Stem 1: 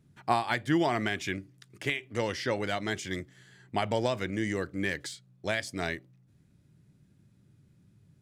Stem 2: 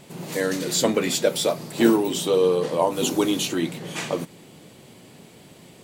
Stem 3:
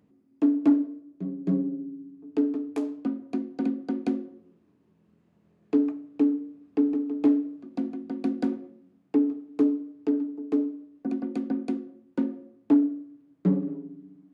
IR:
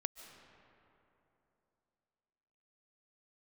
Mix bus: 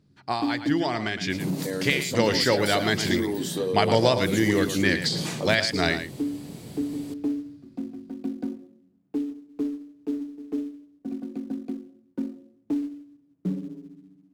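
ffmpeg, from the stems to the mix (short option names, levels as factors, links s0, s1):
-filter_complex "[0:a]equalizer=f=4600:w=2.7:g=13,dynaudnorm=f=550:g=5:m=3.76,volume=0.794,asplit=2[s0][s1];[s1]volume=0.316[s2];[1:a]aexciter=amount=2.9:drive=3.7:freq=4000,adelay=1300,volume=1[s3];[2:a]acrusher=bits=5:mode=log:mix=0:aa=0.000001,volume=0.299[s4];[s3][s4]amix=inputs=2:normalize=0,lowshelf=f=330:g=11.5,alimiter=limit=0.112:level=0:latency=1:release=352,volume=1[s5];[s2]aecho=0:1:112:1[s6];[s0][s5][s6]amix=inputs=3:normalize=0,highshelf=f=7400:g=-8"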